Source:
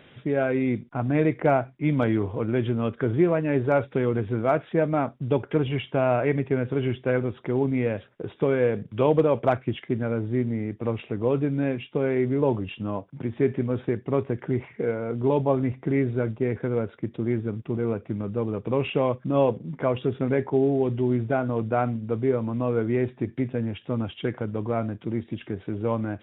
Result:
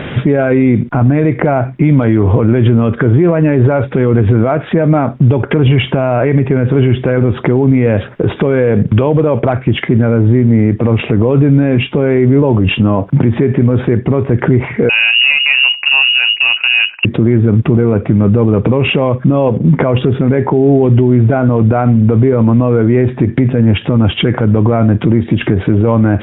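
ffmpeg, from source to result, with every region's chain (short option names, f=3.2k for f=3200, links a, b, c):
-filter_complex "[0:a]asettb=1/sr,asplit=3[a][b][c];[a]atrim=end=14.894[d];[b]atrim=start=14.89:end=17.05,asetpts=PTS-STARTPTS,afade=t=in:d=0.004:c=qsin,afade=t=out:st=2.156:d=0.004:c=qsin,adynamicsmooth=sensitivity=2.5:basefreq=730,lowpass=f=2.6k:t=q:w=0.5098,lowpass=f=2.6k:t=q:w=0.6013,lowpass=f=2.6k:t=q:w=0.9,lowpass=f=2.6k:t=q:w=2.563,afreqshift=-3000[e];[c]atrim=start=17.046[f];[d][e]acrossfade=d=0.004:c1=hsin:c2=qsin[g];[g][f]acrossfade=d=0.004:c1=qsin:c2=hsin,acompressor=threshold=-30dB:ratio=6,bass=f=250:g=4,treble=f=4k:g=-15,alimiter=level_in=29.5dB:limit=-1dB:release=50:level=0:latency=1,volume=-1dB"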